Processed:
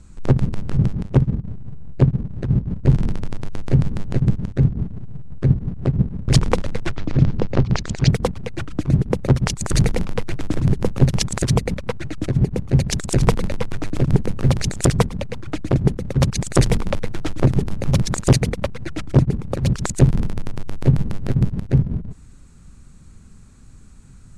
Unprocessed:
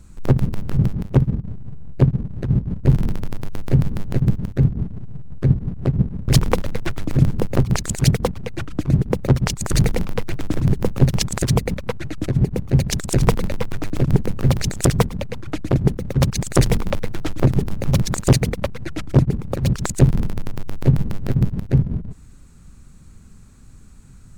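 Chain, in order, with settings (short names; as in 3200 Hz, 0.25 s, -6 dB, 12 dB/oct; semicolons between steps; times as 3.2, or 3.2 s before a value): LPF 9400 Hz 24 dB/oct, from 6.91 s 5600 Hz, from 8.11 s 11000 Hz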